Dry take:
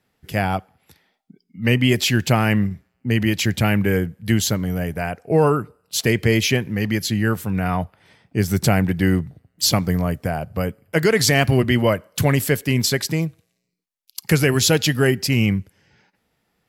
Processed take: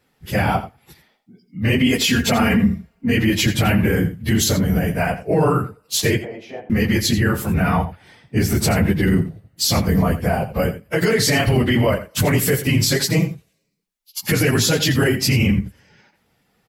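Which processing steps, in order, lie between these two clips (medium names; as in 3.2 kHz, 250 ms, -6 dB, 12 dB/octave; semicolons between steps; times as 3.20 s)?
phase randomisation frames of 50 ms; 1.78–3.17 s: comb 4.3 ms, depth 64%; peak limiter -13.5 dBFS, peak gain reduction 10.5 dB; 6.19–6.70 s: band-pass filter 690 Hz, Q 3.8; on a send: delay 85 ms -13 dB; on the sum: trim +5 dB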